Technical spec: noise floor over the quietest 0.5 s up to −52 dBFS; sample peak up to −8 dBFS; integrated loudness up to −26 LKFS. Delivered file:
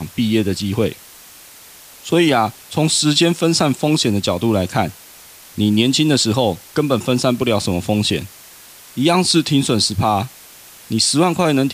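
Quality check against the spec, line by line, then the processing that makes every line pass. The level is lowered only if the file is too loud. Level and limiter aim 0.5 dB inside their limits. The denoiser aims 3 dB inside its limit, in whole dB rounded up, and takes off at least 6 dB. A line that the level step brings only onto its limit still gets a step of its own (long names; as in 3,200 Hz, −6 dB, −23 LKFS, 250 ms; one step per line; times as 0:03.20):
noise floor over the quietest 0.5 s −42 dBFS: out of spec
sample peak −3.5 dBFS: out of spec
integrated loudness −16.5 LKFS: out of spec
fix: broadband denoise 6 dB, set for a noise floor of −42 dBFS
level −10 dB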